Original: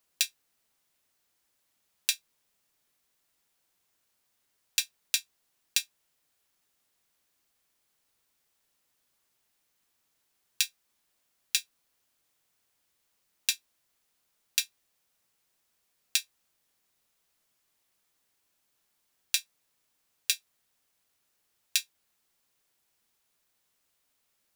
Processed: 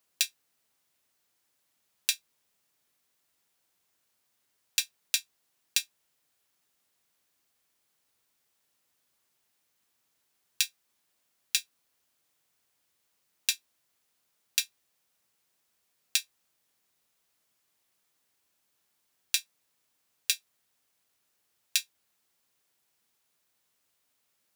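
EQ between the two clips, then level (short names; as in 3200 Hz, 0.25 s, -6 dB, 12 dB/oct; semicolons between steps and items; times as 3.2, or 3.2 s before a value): HPF 65 Hz; 0.0 dB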